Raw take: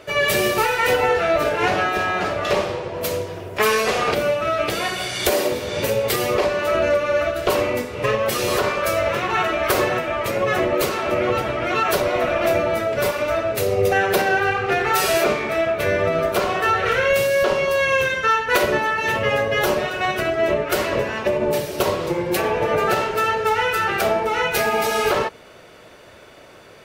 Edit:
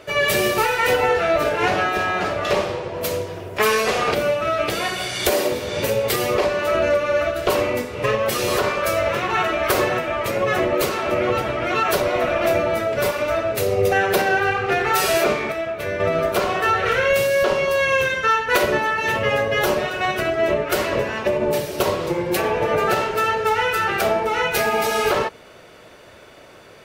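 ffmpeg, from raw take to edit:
ffmpeg -i in.wav -filter_complex "[0:a]asplit=3[link_01][link_02][link_03];[link_01]atrim=end=15.522[link_04];[link_02]atrim=start=15.518:end=16.002,asetpts=PTS-STARTPTS,volume=-5.5dB[link_05];[link_03]atrim=start=15.998[link_06];[link_04][link_05]acrossfade=duration=0.004:curve1=hsin:curve2=hsin[link_07];[link_07][link_06]acrossfade=duration=0.004:curve1=hsin:curve2=hsin" out.wav

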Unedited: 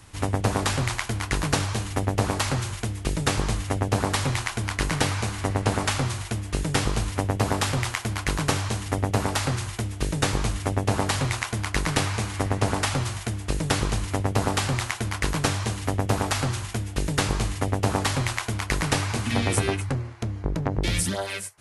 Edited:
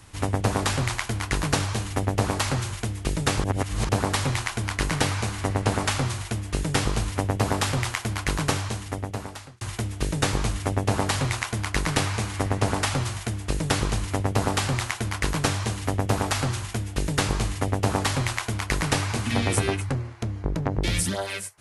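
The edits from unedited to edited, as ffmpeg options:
ffmpeg -i in.wav -filter_complex "[0:a]asplit=4[link_01][link_02][link_03][link_04];[link_01]atrim=end=3.442[link_05];[link_02]atrim=start=3.438:end=3.892,asetpts=PTS-STARTPTS,areverse[link_06];[link_03]atrim=start=3.888:end=9.61,asetpts=PTS-STARTPTS,afade=type=out:start_time=4.542:duration=1.18[link_07];[link_04]atrim=start=9.61,asetpts=PTS-STARTPTS,afade=type=in:duration=0.004:curve=hsin[link_08];[link_05][link_06]acrossfade=duration=0.004:curve1=hsin:curve2=hsin[link_09];[link_07][link_08]concat=n=2:v=0:a=1[link_10];[link_09][link_10]acrossfade=duration=0.004:curve1=hsin:curve2=hsin" out.wav

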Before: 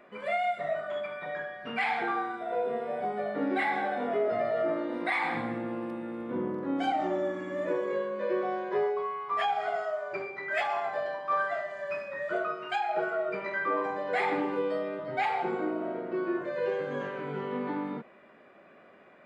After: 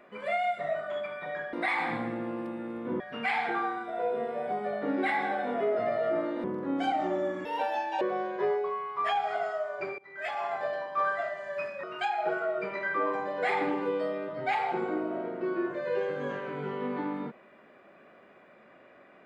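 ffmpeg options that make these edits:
ffmpeg -i in.wav -filter_complex "[0:a]asplit=8[link_01][link_02][link_03][link_04][link_05][link_06][link_07][link_08];[link_01]atrim=end=1.532[link_09];[link_02]atrim=start=4.968:end=6.442[link_10];[link_03]atrim=start=1.528:end=4.972[link_11];[link_04]atrim=start=6.438:end=7.454[link_12];[link_05]atrim=start=7.45:end=8.34,asetpts=PTS-STARTPTS,asetrate=69678,aresample=44100,atrim=end_sample=24841,asetpts=PTS-STARTPTS[link_13];[link_06]atrim=start=8.336:end=10.31,asetpts=PTS-STARTPTS,afade=type=out:start_time=1.97:duration=0.004:curve=hsin:silence=0.0841395[link_14];[link_07]atrim=start=10.31:end=12.162,asetpts=PTS-STARTPTS,afade=type=in:duration=0.58:silence=0.0841395[link_15];[link_08]atrim=start=12.538[link_16];[link_09][link_10]acrossfade=duration=0.004:curve1=hsin:curve2=hsin[link_17];[link_17][link_11]acrossfade=duration=0.004:curve1=hsin:curve2=hsin[link_18];[link_18][link_12]acrossfade=duration=0.004:curve1=hsin:curve2=hsin[link_19];[link_19][link_13]acrossfade=duration=0.004:curve1=hsin:curve2=hsin[link_20];[link_14][link_15]concat=n=2:v=0:a=1[link_21];[link_20][link_21]acrossfade=duration=0.004:curve1=hsin:curve2=hsin[link_22];[link_22][link_16]acrossfade=duration=0.004:curve1=hsin:curve2=hsin" out.wav

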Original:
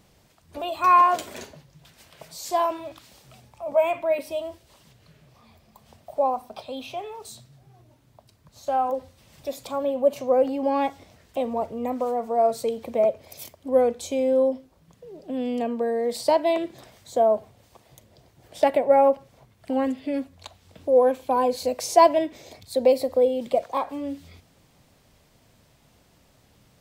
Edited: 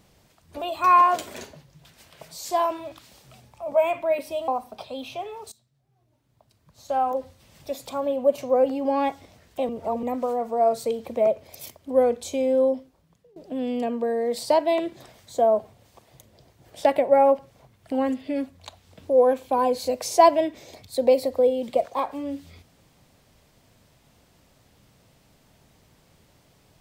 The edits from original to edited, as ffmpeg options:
ffmpeg -i in.wav -filter_complex "[0:a]asplit=6[link_01][link_02][link_03][link_04][link_05][link_06];[link_01]atrim=end=4.482[link_07];[link_02]atrim=start=6.258:end=7.3,asetpts=PTS-STARTPTS,afade=type=out:start_time=1.038:duration=0.004:curve=hsin:silence=0.105925[link_08];[link_03]atrim=start=7.3:end=11.472,asetpts=PTS-STARTPTS,afade=type=in:duration=1.44:curve=qua:silence=0.105925[link_09];[link_04]atrim=start=11.468:end=11.812,asetpts=PTS-STARTPTS,areverse[link_10];[link_05]atrim=start=11.808:end=15.14,asetpts=PTS-STARTPTS,afade=type=out:start_time=2.702:duration=0.63:silence=0.112202[link_11];[link_06]atrim=start=15.14,asetpts=PTS-STARTPTS,afade=type=in:duration=0.004:curve=hsin:silence=0.112202[link_12];[link_08][link_09]concat=n=2:v=0:a=1[link_13];[link_07][link_13]acrossfade=duration=0.004:curve1=hsin:curve2=hsin[link_14];[link_14][link_10]acrossfade=duration=0.004:curve1=hsin:curve2=hsin[link_15];[link_11][link_12]concat=n=2:v=0:a=1[link_16];[link_15][link_16]acrossfade=duration=0.004:curve1=hsin:curve2=hsin" out.wav

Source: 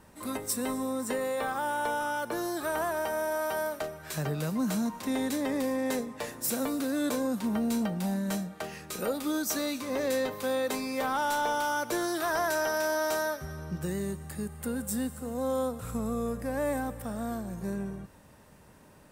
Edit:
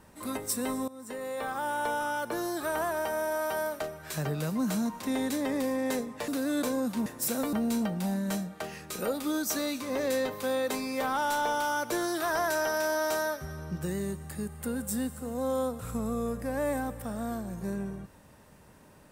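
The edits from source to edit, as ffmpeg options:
ffmpeg -i in.wav -filter_complex "[0:a]asplit=5[link_01][link_02][link_03][link_04][link_05];[link_01]atrim=end=0.88,asetpts=PTS-STARTPTS,afade=type=out:start_time=0.876:duration=0.004:curve=hsin:silence=0.112202[link_06];[link_02]atrim=start=0.88:end=6.282,asetpts=PTS-STARTPTS,afade=type=in:duration=1.13:curve=qsin:silence=0.112202[link_07];[link_03]atrim=start=6.748:end=7.532[link_08];[link_04]atrim=start=6.278:end=6.752[link_09];[link_05]atrim=start=7.528[link_10];[link_06][link_07]concat=n=2:v=0:a=1[link_11];[link_11][link_08]acrossfade=duration=0.004:curve1=hsin:curve2=hsin[link_12];[link_12][link_09]acrossfade=duration=0.004:curve1=hsin:curve2=hsin[link_13];[link_13][link_10]acrossfade=duration=0.004:curve1=hsin:curve2=hsin" out.wav

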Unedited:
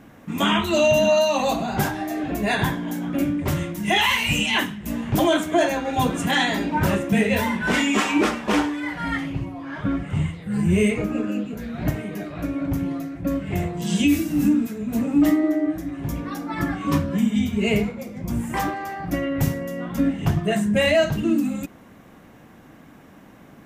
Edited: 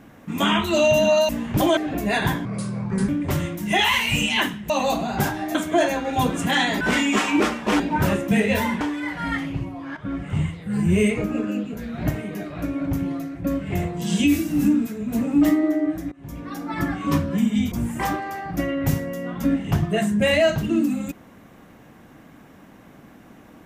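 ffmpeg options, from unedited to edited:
ffmpeg -i in.wav -filter_complex "[0:a]asplit=13[link_01][link_02][link_03][link_04][link_05][link_06][link_07][link_08][link_09][link_10][link_11][link_12][link_13];[link_01]atrim=end=1.292[link_14];[link_02]atrim=start=4.868:end=5.352[link_15];[link_03]atrim=start=2.138:end=2.824[link_16];[link_04]atrim=start=2.82:end=3.26,asetpts=PTS-STARTPTS,asetrate=30429,aresample=44100[link_17];[link_05]atrim=start=3.256:end=4.872[link_18];[link_06]atrim=start=1.288:end=2.142[link_19];[link_07]atrim=start=5.348:end=6.612[link_20];[link_08]atrim=start=7.618:end=8.612[link_21];[link_09]atrim=start=6.608:end=7.622[link_22];[link_10]atrim=start=8.608:end=9.77,asetpts=PTS-STARTPTS,afade=type=out:start_time=1.158:duration=0.004:curve=hsin:silence=0.237137[link_23];[link_11]atrim=start=9.77:end=15.92,asetpts=PTS-STARTPTS,afade=type=in:duration=0.32:silence=0.237137,afade=type=out:start_time=6.146:duration=0.004:curve=hsin:silence=0.0749894[link_24];[link_12]atrim=start=15.92:end=17.522,asetpts=PTS-STARTPTS,afade=type=in:duration=0.55:silence=0.0749894[link_25];[link_13]atrim=start=18.258[link_26];[link_14][link_15]acrossfade=duration=0.004:curve1=hsin:curve2=hsin[link_27];[link_27][link_16]acrossfade=duration=0.004:curve1=hsin:curve2=hsin[link_28];[link_28][link_17]acrossfade=duration=0.004:curve1=hsin:curve2=hsin[link_29];[link_29][link_18]acrossfade=duration=0.004:curve1=hsin:curve2=hsin[link_30];[link_30][link_19]acrossfade=duration=0.004:curve1=hsin:curve2=hsin[link_31];[link_31][link_20]acrossfade=duration=0.004:curve1=hsin:curve2=hsin[link_32];[link_32][link_21]acrossfade=duration=0.004:curve1=hsin:curve2=hsin[link_33];[link_33][link_22]acrossfade=duration=0.004:curve1=hsin:curve2=hsin[link_34];[link_23][link_24][link_25]concat=n=3:v=0:a=1[link_35];[link_34][link_35]acrossfade=duration=0.004:curve1=hsin:curve2=hsin[link_36];[link_36][link_26]acrossfade=duration=0.004:curve1=hsin:curve2=hsin" out.wav

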